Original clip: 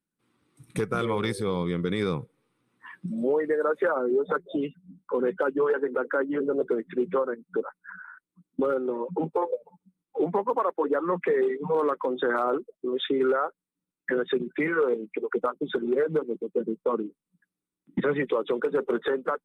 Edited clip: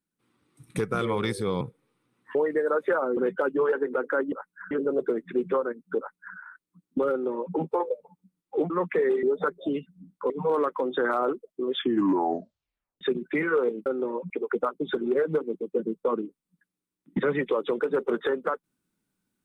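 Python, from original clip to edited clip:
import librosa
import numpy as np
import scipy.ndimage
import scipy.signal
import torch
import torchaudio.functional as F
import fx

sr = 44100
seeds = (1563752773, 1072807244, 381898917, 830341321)

y = fx.edit(x, sr, fx.cut(start_s=1.61, length_s=0.55),
    fx.cut(start_s=2.9, length_s=0.39),
    fx.move(start_s=4.11, length_s=1.07, to_s=11.55),
    fx.duplicate(start_s=7.6, length_s=0.39, to_s=6.33),
    fx.duplicate(start_s=8.72, length_s=0.44, to_s=15.11),
    fx.cut(start_s=10.32, length_s=0.7),
    fx.tape_stop(start_s=13.0, length_s=1.26), tone=tone)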